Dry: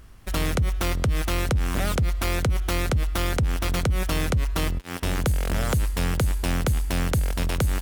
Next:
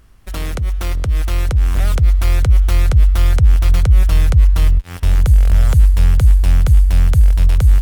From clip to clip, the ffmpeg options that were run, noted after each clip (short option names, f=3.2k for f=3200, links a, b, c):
-af "asubboost=boost=9:cutoff=89,dynaudnorm=f=260:g=13:m=11.5dB,volume=-1dB"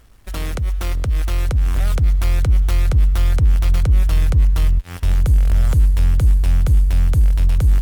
-filter_complex "[0:a]asplit=2[a][b];[b]asoftclip=type=hard:threshold=-14dB,volume=-5dB[c];[a][c]amix=inputs=2:normalize=0,acrusher=bits=7:mix=0:aa=0.5,volume=-5.5dB"